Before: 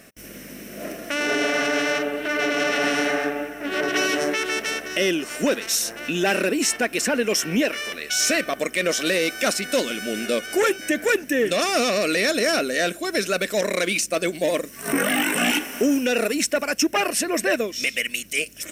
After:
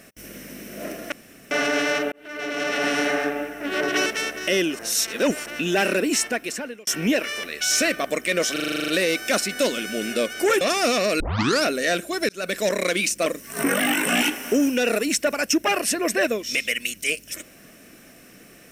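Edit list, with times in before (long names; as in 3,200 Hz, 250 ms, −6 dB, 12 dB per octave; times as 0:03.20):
0:01.12–0:01.51: fill with room tone
0:02.12–0:03.22: fade in equal-power
0:04.06–0:04.55: remove
0:05.28–0:05.95: reverse
0:06.63–0:07.36: fade out
0:09.01: stutter 0.04 s, 10 plays
0:10.74–0:11.53: remove
0:12.12: tape start 0.43 s
0:13.21–0:13.48: fade in
0:14.18–0:14.55: remove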